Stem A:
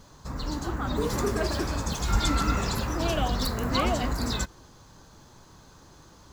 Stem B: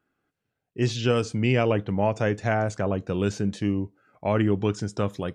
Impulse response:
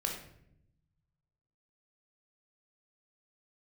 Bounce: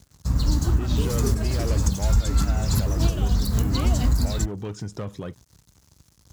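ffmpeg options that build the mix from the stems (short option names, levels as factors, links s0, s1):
-filter_complex "[0:a]aeval=exprs='sgn(val(0))*max(abs(val(0))-0.00398,0)':c=same,bass=f=250:g=13,treble=f=4000:g=12,volume=0.944[s0];[1:a]asoftclip=type=tanh:threshold=0.0794,acompressor=threshold=0.0251:ratio=2,volume=0.944,asplit=2[s1][s2];[s2]apad=whole_len=279076[s3];[s0][s3]sidechaincompress=threshold=0.0178:ratio=8:attack=6.6:release=133[s4];[s4][s1]amix=inputs=2:normalize=0,highpass=f=43:w=0.5412,highpass=f=43:w=1.3066,lowshelf=f=160:g=5.5,alimiter=limit=0.282:level=0:latency=1:release=359"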